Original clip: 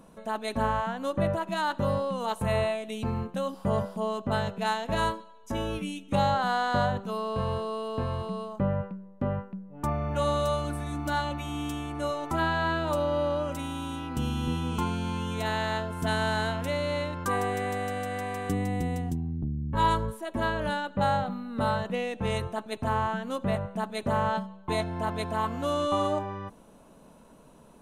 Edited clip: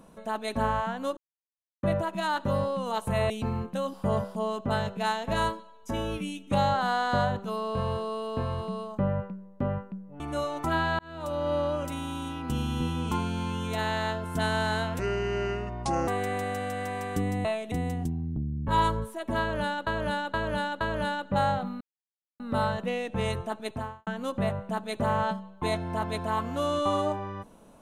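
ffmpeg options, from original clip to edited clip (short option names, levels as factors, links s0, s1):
-filter_complex "[0:a]asplit=14[s0][s1][s2][s3][s4][s5][s6][s7][s8][s9][s10][s11][s12][s13];[s0]atrim=end=1.17,asetpts=PTS-STARTPTS,afade=t=out:st=1.166:d=0.004:c=hsin,apad=pad_dur=0.66[s14];[s1]atrim=start=1.17:end=2.642,asetpts=PTS-STARTPTS,afade=t=in:d=0.004:c=hsin[s15];[s2]atrim=start=2.908:end=9.812[s16];[s3]atrim=start=11.868:end=12.66,asetpts=PTS-STARTPTS,afade=t=out:st=0.788:d=0.004:c=hsin[s17];[s4]atrim=start=12.66:end=16.664,asetpts=PTS-STARTPTS,afade=t=in:d=0.55[s18];[s5]atrim=start=16.66:end=17.41,asetpts=PTS-STARTPTS,asetrate=30429,aresample=44100[s19];[s6]atrim=start=17.406:end=18.782[s20];[s7]atrim=start=2.638:end=2.912[s21];[s8]atrim=start=18.778:end=20.932[s22];[s9]atrim=start=20.458:end=20.932[s23];[s10]atrim=start=20.458:end=20.932[s24];[s11]atrim=start=20.458:end=21.46,asetpts=PTS-STARTPTS,afade=t=out:st=0.998:d=0.004:c=hsin,apad=pad_dur=0.59[s25];[s12]atrim=start=21.46:end=23.13,asetpts=PTS-STARTPTS,afade=t=in:d=0.004:c=hsin,afade=t=out:st=1.32:d=0.35:c=qua[s26];[s13]atrim=start=23.13,asetpts=PTS-STARTPTS,afade=t=in:d=0.004:c=hsin[s27];[s14][s15]concat=n=2:v=0:a=1[s28];[s28][s16]acrossfade=d=0.004:c1=hsin:c2=hsin[s29];[s17][s18]concat=n=2:v=0:a=1[s30];[s29][s30]acrossfade=d=0.004:c1=hsin:c2=hsin[s31];[s31][s19]acrossfade=d=0.004:c1=hsin:c2=hsin[s32];[s32][s20]acrossfade=d=0.004:c1=hsin:c2=hsin[s33];[s33][s21]acrossfade=d=0.004:c1=hsin:c2=hsin[s34];[s34][s22]acrossfade=d=0.004:c1=hsin:c2=hsin[s35];[s35][s23]acrossfade=d=0.004:c1=hsin:c2=hsin[s36];[s36][s24]acrossfade=d=0.004:c1=hsin:c2=hsin[s37];[s25][s26][s27]concat=n=3:v=0:a=1[s38];[s37][s38]acrossfade=d=0.004:c1=hsin:c2=hsin"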